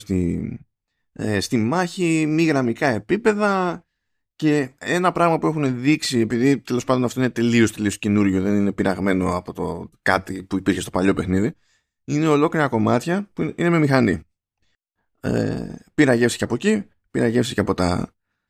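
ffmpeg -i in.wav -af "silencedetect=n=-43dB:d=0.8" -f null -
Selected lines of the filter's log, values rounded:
silence_start: 14.22
silence_end: 15.24 | silence_duration: 1.01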